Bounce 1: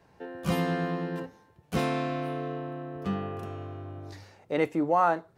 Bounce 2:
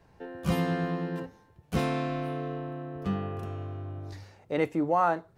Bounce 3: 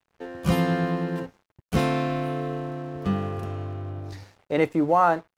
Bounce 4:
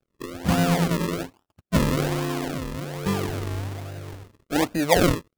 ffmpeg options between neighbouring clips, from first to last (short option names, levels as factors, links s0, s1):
-af "lowshelf=f=85:g=12,volume=0.841"
-af "aeval=exprs='sgn(val(0))*max(abs(val(0))-0.00188,0)':c=same,volume=1.88"
-af "afftfilt=real='re*pow(10,11/40*sin(2*PI*(0.6*log(max(b,1)*sr/1024/100)/log(2)-(-0.96)*(pts-256)/sr)))':imag='im*pow(10,11/40*sin(2*PI*(0.6*log(max(b,1)*sr/1024/100)/log(2)-(-0.96)*(pts-256)/sr)))':win_size=1024:overlap=0.75,acrusher=samples=40:mix=1:aa=0.000001:lfo=1:lforange=40:lforate=1.2"